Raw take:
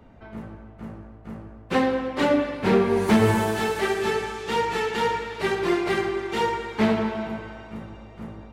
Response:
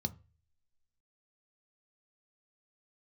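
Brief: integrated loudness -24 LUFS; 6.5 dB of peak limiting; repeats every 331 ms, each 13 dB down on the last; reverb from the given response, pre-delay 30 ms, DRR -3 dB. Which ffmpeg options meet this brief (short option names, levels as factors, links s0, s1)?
-filter_complex "[0:a]alimiter=limit=0.15:level=0:latency=1,aecho=1:1:331|662|993:0.224|0.0493|0.0108,asplit=2[s0][s1];[1:a]atrim=start_sample=2205,adelay=30[s2];[s1][s2]afir=irnorm=-1:irlink=0,volume=1.41[s3];[s0][s3]amix=inputs=2:normalize=0,volume=0.422"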